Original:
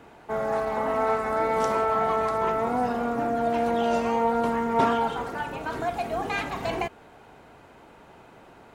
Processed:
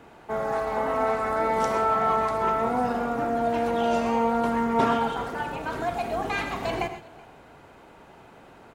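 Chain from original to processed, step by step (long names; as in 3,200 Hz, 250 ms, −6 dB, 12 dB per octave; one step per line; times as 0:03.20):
single-tap delay 375 ms −23.5 dB
reverb whose tail is shaped and stops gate 150 ms rising, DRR 8.5 dB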